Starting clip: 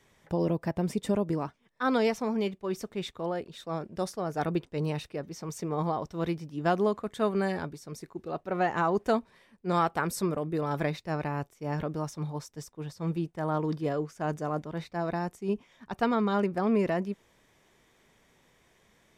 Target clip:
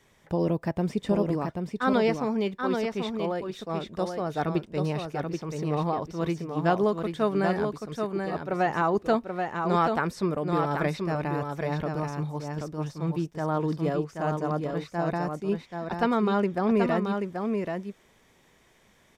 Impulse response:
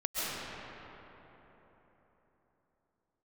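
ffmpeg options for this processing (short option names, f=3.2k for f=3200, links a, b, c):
-filter_complex "[0:a]acrossover=split=5200[a][b];[b]acompressor=threshold=-57dB:ratio=4:attack=1:release=60[c];[a][c]amix=inputs=2:normalize=0,asplit=2[d][e];[e]aecho=0:1:782:0.562[f];[d][f]amix=inputs=2:normalize=0,volume=2dB"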